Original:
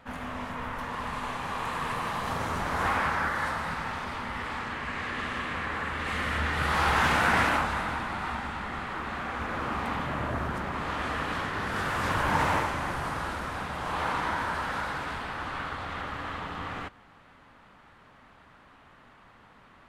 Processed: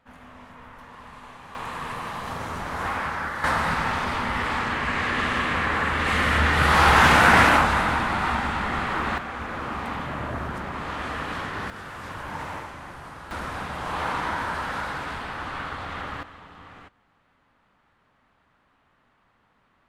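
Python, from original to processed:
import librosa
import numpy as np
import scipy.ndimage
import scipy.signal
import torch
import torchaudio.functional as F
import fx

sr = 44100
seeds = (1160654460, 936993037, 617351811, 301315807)

y = fx.gain(x, sr, db=fx.steps((0.0, -10.0), (1.55, -1.0), (3.44, 8.5), (9.18, 0.5), (11.7, -8.5), (13.31, 2.0), (16.23, -10.0)))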